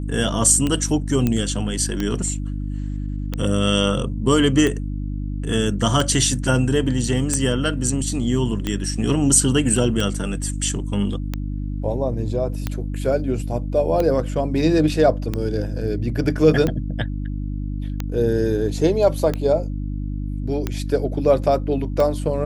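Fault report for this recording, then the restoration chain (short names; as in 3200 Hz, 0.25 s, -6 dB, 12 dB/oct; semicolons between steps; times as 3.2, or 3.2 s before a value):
hum 50 Hz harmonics 6 -26 dBFS
tick 45 rpm -10 dBFS
1.27 pop -8 dBFS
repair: de-click; de-hum 50 Hz, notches 6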